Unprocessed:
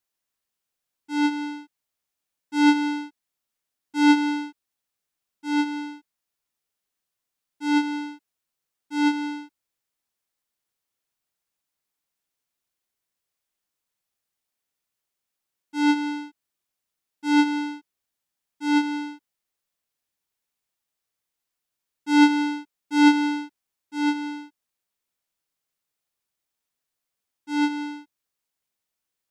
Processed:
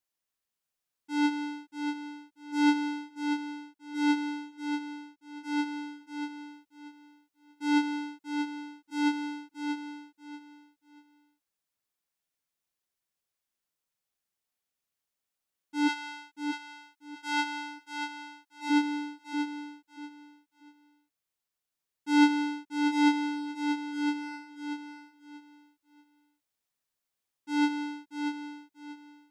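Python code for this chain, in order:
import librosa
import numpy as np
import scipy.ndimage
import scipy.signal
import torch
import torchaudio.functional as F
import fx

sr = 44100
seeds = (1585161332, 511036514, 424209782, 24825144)

y = fx.highpass(x, sr, hz=fx.line((15.87, 990.0), (18.69, 490.0)), slope=12, at=(15.87, 18.69), fade=0.02)
y = fx.rider(y, sr, range_db=10, speed_s=2.0)
y = fx.echo_feedback(y, sr, ms=636, feedback_pct=25, wet_db=-6.5)
y = y * 10.0 ** (-5.0 / 20.0)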